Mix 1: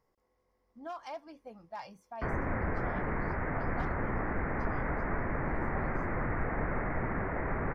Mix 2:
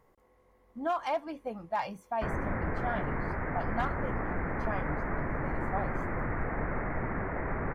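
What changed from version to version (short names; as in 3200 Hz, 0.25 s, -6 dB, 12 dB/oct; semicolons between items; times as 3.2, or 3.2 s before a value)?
speech +11.0 dB; master: add bell 5200 Hz -12 dB 0.42 oct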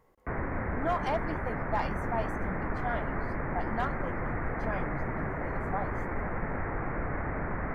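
background: entry -1.95 s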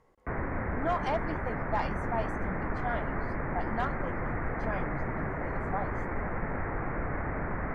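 master: add LPF 9300 Hz 12 dB/oct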